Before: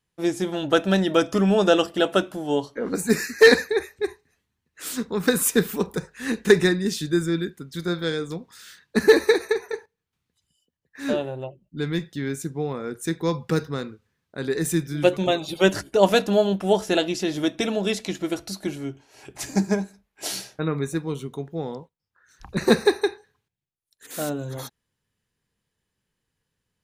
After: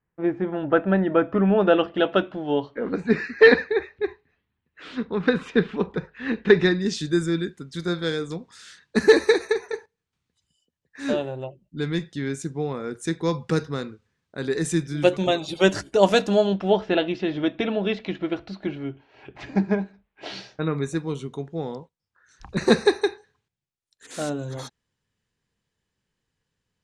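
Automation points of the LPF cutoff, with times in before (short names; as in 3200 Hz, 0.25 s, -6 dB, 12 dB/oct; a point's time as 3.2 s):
LPF 24 dB/oct
1.29 s 2000 Hz
2.09 s 3400 Hz
6.46 s 3400 Hz
7.09 s 8800 Hz
16.3 s 8800 Hz
16.84 s 3300 Hz
20.25 s 3300 Hz
20.76 s 8400 Hz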